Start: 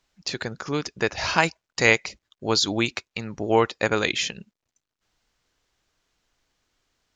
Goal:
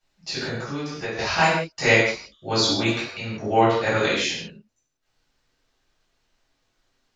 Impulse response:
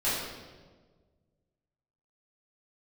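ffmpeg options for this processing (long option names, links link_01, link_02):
-filter_complex "[1:a]atrim=start_sample=2205,afade=type=out:start_time=0.25:duration=0.01,atrim=end_sample=11466[link_01];[0:a][link_01]afir=irnorm=-1:irlink=0,asettb=1/sr,asplit=3[link_02][link_03][link_04];[link_02]atrim=end=0.654[link_05];[link_03]atrim=start=0.65:end=1.19,asetpts=PTS-STARTPTS,afade=type=in:duration=0.004:curve=qsin,afade=type=out:start_time=0.536:duration=0.004:curve=qsin,acompressor=threshold=-19dB:ratio=5[link_06];[link_04]atrim=start=1.186[link_07];[link_05][link_06]acrossfade=duration=0.004:curve1=hsin:curve2=qsin[link_08];[link_08][link_07]acrossfade=duration=0.004:curve1=qsin:curve2=hsin,volume=-8dB"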